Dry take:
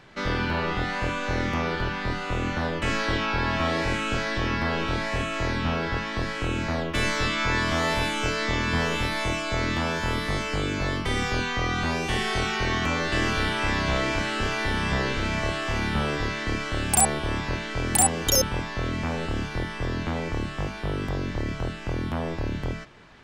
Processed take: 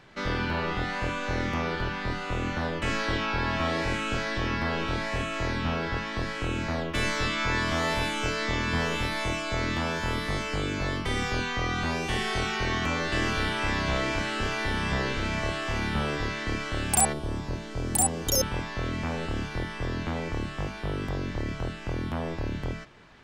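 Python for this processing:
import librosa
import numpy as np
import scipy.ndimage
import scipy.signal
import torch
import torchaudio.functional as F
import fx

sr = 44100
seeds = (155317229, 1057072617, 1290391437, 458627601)

y = fx.peak_eq(x, sr, hz=2100.0, db=fx.line((17.12, -13.0), (18.39, -6.0)), octaves=2.2, at=(17.12, 18.39), fade=0.02)
y = y * librosa.db_to_amplitude(-2.5)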